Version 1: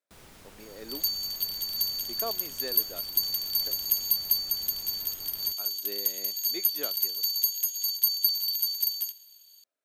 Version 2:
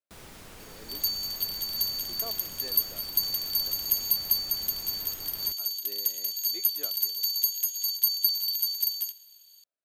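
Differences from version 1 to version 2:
speech -7.5 dB; first sound +4.5 dB

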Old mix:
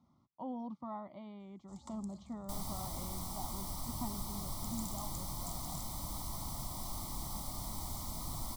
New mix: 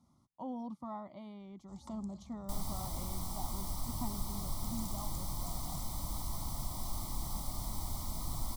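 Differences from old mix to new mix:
speech: remove LPF 3800 Hz 12 dB/oct; first sound: add high shelf 7500 Hz -11 dB; master: add low shelf 70 Hz +7 dB

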